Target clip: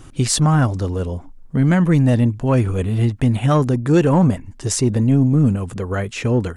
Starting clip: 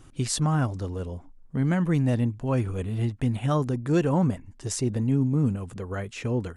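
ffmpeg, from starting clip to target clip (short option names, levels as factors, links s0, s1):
-af "acontrast=34,asoftclip=type=tanh:threshold=0.355,volume=1.68"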